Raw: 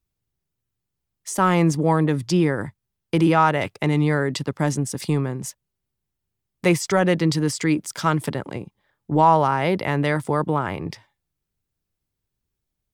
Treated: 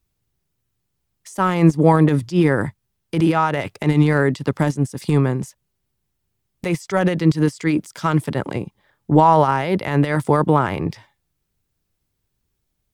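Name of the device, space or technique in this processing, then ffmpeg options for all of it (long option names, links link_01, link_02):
de-esser from a sidechain: -filter_complex "[0:a]asplit=2[link_01][link_02];[link_02]highpass=5300,apad=whole_len=570259[link_03];[link_01][link_03]sidechaincompress=threshold=-43dB:ratio=8:attack=0.56:release=61,volume=7dB"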